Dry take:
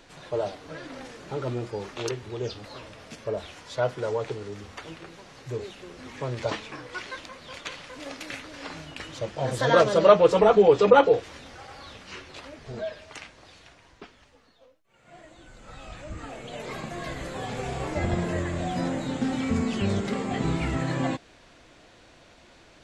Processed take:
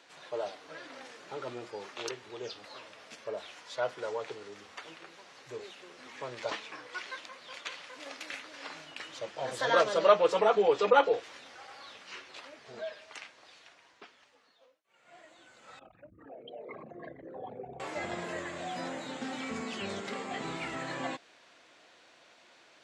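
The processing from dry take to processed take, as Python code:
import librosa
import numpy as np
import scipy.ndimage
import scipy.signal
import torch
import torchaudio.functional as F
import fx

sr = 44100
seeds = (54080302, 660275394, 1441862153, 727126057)

y = fx.envelope_sharpen(x, sr, power=3.0, at=(15.79, 17.8))
y = fx.weighting(y, sr, curve='A')
y = y * 10.0 ** (-4.5 / 20.0)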